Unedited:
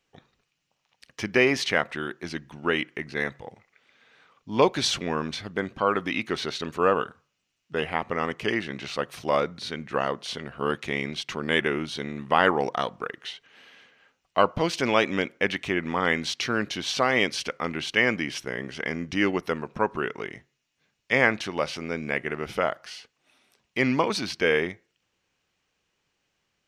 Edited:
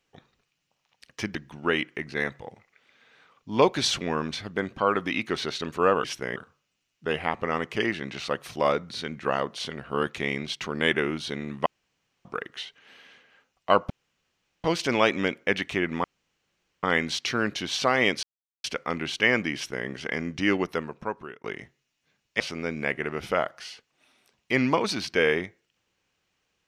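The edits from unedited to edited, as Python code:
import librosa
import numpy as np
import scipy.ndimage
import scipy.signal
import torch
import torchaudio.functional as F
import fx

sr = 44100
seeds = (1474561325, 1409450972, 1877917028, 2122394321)

y = fx.edit(x, sr, fx.cut(start_s=1.35, length_s=1.0),
    fx.room_tone_fill(start_s=12.34, length_s=0.59),
    fx.insert_room_tone(at_s=14.58, length_s=0.74),
    fx.insert_room_tone(at_s=15.98, length_s=0.79),
    fx.insert_silence(at_s=17.38, length_s=0.41),
    fx.duplicate(start_s=18.29, length_s=0.32, to_s=7.04),
    fx.fade_out_to(start_s=19.36, length_s=0.82, floor_db=-23.0),
    fx.cut(start_s=21.14, length_s=0.52), tone=tone)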